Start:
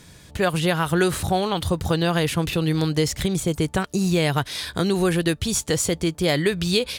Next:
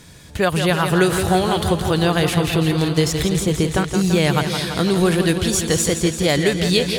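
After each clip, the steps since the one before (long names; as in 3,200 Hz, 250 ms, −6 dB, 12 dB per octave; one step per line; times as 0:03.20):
feedback echo with a swinging delay time 168 ms, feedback 72%, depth 54 cents, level −8 dB
level +3 dB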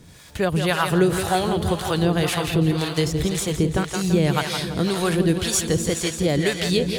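surface crackle 480 per second −40 dBFS
two-band tremolo in antiphase 1.9 Hz, depth 70%, crossover 560 Hz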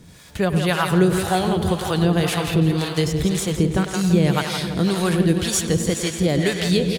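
parametric band 190 Hz +4.5 dB 0.46 octaves
far-end echo of a speakerphone 100 ms, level −10 dB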